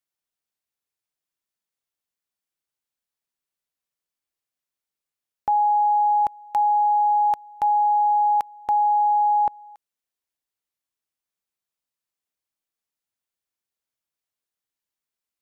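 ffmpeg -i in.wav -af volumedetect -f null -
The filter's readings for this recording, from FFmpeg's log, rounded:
mean_volume: -25.6 dB
max_volume: -15.7 dB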